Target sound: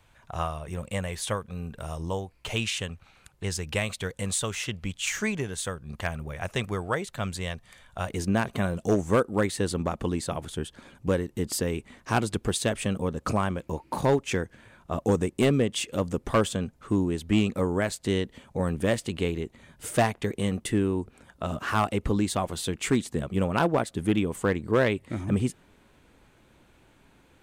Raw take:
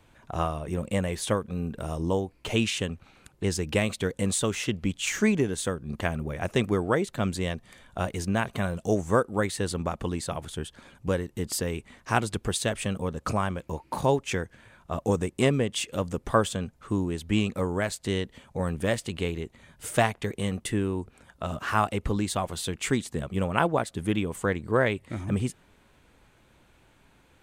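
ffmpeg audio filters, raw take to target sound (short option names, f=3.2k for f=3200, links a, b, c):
-af "asetnsamples=n=441:p=0,asendcmd='8.1 equalizer g 3.5',equalizer=f=290:w=0.88:g=-9.5,asoftclip=type=hard:threshold=-15dB"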